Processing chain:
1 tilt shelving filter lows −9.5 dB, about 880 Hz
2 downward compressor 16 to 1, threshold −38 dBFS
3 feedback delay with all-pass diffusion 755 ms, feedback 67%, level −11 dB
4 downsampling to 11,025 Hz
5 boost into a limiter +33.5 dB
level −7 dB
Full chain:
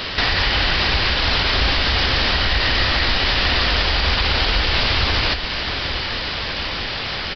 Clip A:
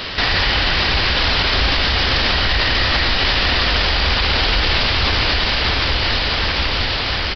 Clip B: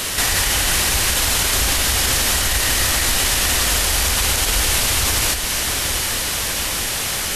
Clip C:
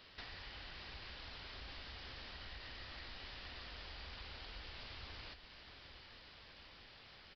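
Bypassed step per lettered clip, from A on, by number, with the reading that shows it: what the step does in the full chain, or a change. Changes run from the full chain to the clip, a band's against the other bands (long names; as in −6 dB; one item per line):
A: 2, average gain reduction 8.0 dB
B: 4, change in momentary loudness spread −2 LU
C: 5, change in crest factor +3.5 dB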